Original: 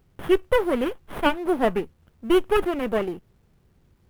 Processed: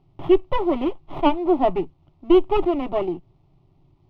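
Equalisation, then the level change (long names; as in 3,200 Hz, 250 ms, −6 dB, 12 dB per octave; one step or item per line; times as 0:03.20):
high-frequency loss of the air 260 metres
phaser with its sweep stopped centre 320 Hz, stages 8
+6.0 dB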